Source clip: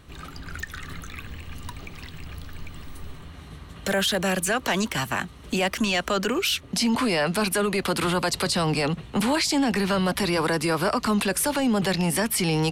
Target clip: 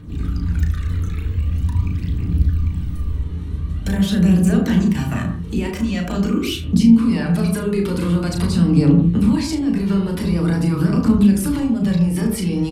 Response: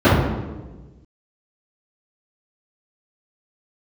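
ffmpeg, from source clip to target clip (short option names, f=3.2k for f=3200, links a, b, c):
-filter_complex "[0:a]lowshelf=f=420:t=q:w=1.5:g=8,acompressor=threshold=-20dB:ratio=6,aphaser=in_gain=1:out_gain=1:delay=2.4:decay=0.47:speed=0.45:type=triangular,aecho=1:1:35|75:0.562|0.168,asplit=2[a][b];[1:a]atrim=start_sample=2205,afade=t=out:st=0.18:d=0.01,atrim=end_sample=8379,asetrate=34839,aresample=44100[c];[b][c]afir=irnorm=-1:irlink=0,volume=-29dB[d];[a][d]amix=inputs=2:normalize=0,volume=-4.5dB"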